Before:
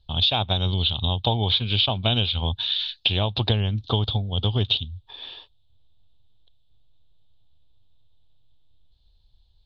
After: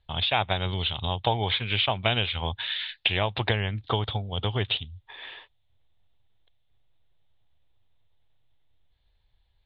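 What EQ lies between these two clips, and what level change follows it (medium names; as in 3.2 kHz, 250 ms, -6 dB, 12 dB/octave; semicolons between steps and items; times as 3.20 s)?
resonant low-pass 2 kHz, resonance Q 4.8; bass shelf 140 Hz -9 dB; peaking EQ 240 Hz -5 dB 0.63 oct; 0.0 dB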